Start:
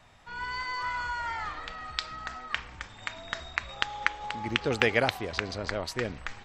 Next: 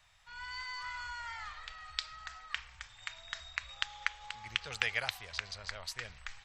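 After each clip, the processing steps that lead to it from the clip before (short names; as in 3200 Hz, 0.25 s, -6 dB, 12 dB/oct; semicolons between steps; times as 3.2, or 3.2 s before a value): passive tone stack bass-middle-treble 10-0-10; gain -2 dB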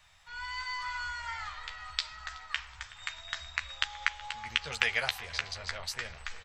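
doubler 13 ms -6 dB; darkening echo 0.373 s, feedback 83%, low-pass 2100 Hz, level -16.5 dB; gain +3.5 dB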